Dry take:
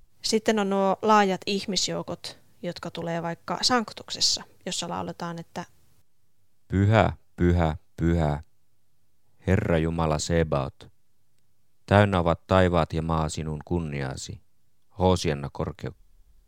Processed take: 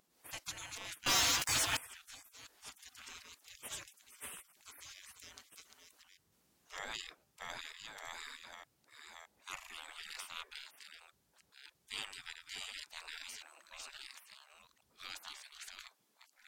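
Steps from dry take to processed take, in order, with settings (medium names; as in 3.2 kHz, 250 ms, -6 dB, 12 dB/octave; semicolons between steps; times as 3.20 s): chunks repeated in reverse 617 ms, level -7 dB; spectral gate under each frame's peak -30 dB weak; 1.06–1.77 s: waveshaping leveller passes 5; trim -1.5 dB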